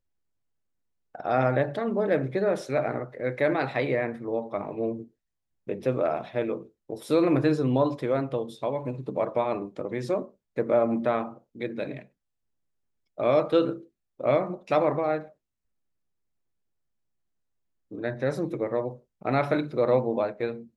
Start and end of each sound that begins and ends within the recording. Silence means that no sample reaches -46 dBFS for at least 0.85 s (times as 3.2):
1.15–12.05
13.18–15.3